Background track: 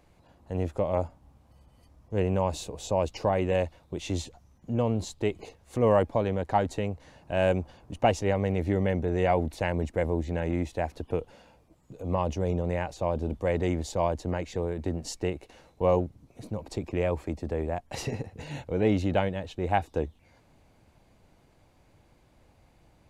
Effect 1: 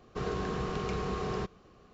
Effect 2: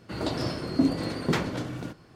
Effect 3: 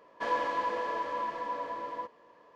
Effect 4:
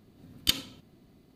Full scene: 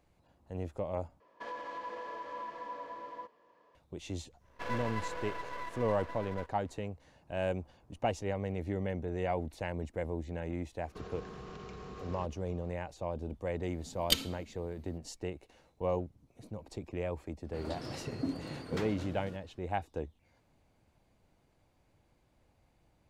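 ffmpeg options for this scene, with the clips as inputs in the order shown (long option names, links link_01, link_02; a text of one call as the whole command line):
ffmpeg -i bed.wav -i cue0.wav -i cue1.wav -i cue2.wav -i cue3.wav -filter_complex "[3:a]asplit=2[link_01][link_02];[0:a]volume=-9dB[link_03];[link_01]alimiter=level_in=2.5dB:limit=-24dB:level=0:latency=1:release=129,volume=-2.5dB[link_04];[link_02]aeval=exprs='max(val(0),0)':channel_layout=same[link_05];[1:a]acompressor=threshold=-38dB:ratio=6:attack=3.2:release=140:knee=1:detection=peak[link_06];[4:a]aecho=1:1:4.5:0.48[link_07];[link_03]asplit=2[link_08][link_09];[link_08]atrim=end=1.204[link_10];[link_04]atrim=end=2.55,asetpts=PTS-STARTPTS,volume=-7dB[link_11];[link_09]atrim=start=3.746[link_12];[link_05]atrim=end=2.55,asetpts=PTS-STARTPTS,volume=-3.5dB,afade=type=in:duration=0.1,afade=type=out:start_time=2.45:duration=0.1,adelay=4390[link_13];[link_06]atrim=end=1.93,asetpts=PTS-STARTPTS,volume=-4.5dB,afade=type=in:duration=0.004:curve=hsin,afade=type=out:start_time=1.926:duration=0.004:curve=hsin,adelay=10800[link_14];[link_07]atrim=end=1.35,asetpts=PTS-STARTPTS,volume=-3.5dB,afade=type=in:duration=0.004:curve=hsin,afade=type=out:start_time=1.346:duration=0.004:curve=hsin,adelay=13630[link_15];[2:a]atrim=end=2.15,asetpts=PTS-STARTPTS,volume=-12.5dB,afade=type=in:duration=0.004:curve=hsin,afade=type=out:start_time=2.146:duration=0.004:curve=hsin,adelay=17440[link_16];[link_10][link_11]acrossfade=duration=0.004:curve1=hsin:curve2=hsin[link_17];[link_17][link_12]acrossfade=duration=0.004:curve1=hsin:curve2=hsin[link_18];[link_18][link_13][link_14][link_15][link_16]amix=inputs=5:normalize=0" out.wav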